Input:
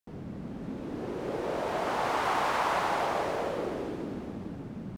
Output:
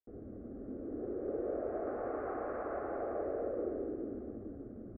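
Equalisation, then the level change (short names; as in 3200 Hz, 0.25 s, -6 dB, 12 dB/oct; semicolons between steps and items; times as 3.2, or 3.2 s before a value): inverse Chebyshev low-pass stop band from 3200 Hz, stop band 50 dB; fixed phaser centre 390 Hz, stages 4; -2.0 dB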